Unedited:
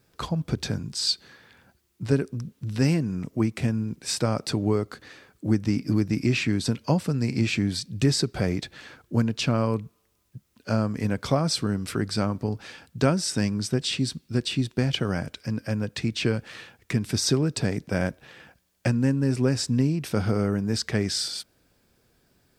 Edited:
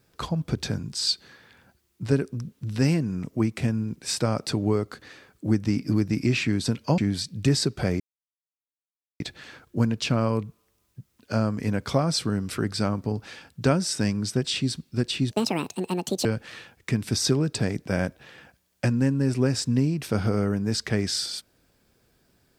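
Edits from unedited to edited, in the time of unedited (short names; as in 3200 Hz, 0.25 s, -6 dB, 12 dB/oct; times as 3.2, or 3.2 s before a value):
6.98–7.55 cut
8.57 insert silence 1.20 s
14.68–16.27 speed 169%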